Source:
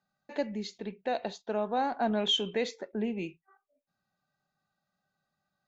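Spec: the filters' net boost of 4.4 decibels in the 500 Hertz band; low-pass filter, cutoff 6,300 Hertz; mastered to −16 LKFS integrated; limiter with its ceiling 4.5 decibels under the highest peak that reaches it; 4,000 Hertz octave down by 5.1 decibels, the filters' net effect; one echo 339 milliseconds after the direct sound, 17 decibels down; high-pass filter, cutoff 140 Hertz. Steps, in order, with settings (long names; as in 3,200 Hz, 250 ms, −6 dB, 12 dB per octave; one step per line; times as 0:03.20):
high-pass filter 140 Hz
low-pass filter 6,300 Hz
parametric band 500 Hz +5.5 dB
parametric band 4,000 Hz −7 dB
brickwall limiter −20.5 dBFS
single-tap delay 339 ms −17 dB
level +16.5 dB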